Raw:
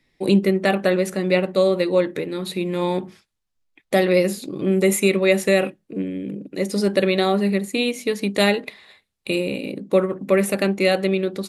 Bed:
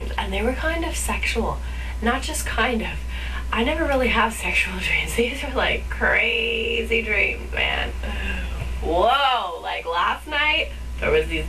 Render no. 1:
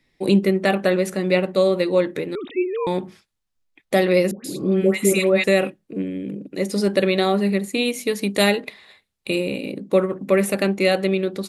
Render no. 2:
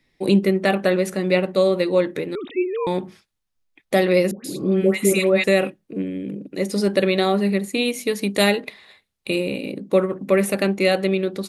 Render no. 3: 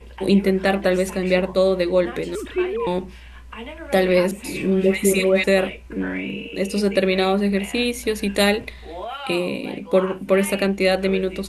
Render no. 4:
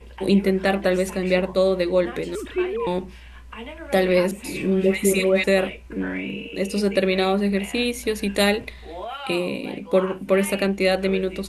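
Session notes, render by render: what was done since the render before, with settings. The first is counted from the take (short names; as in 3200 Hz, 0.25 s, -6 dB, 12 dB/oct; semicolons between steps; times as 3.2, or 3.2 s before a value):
2.35–2.87 sine-wave speech; 4.31–5.44 dispersion highs, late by 0.135 s, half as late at 1100 Hz; 7.85–8.57 high shelf 9500 Hz +9 dB
notch 7500 Hz, Q 25
add bed -13.5 dB
gain -1.5 dB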